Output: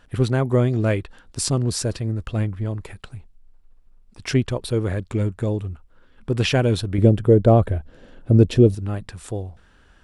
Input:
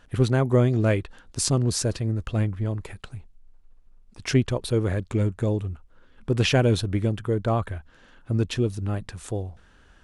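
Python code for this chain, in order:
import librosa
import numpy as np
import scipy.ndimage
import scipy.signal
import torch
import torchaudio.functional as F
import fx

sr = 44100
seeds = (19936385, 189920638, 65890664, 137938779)

y = fx.low_shelf_res(x, sr, hz=780.0, db=8.5, q=1.5, at=(6.98, 8.75))
y = fx.notch(y, sr, hz=6400.0, q=14.0)
y = F.gain(torch.from_numpy(y), 1.0).numpy()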